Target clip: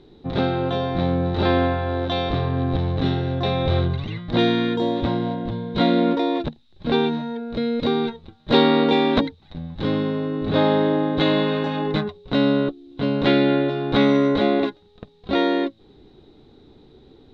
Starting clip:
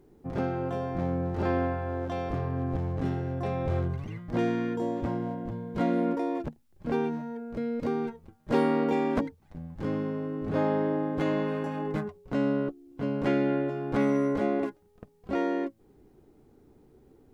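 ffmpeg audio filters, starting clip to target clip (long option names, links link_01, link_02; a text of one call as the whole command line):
ffmpeg -i in.wav -af "lowpass=frequency=3800:width_type=q:width=15,volume=8dB" out.wav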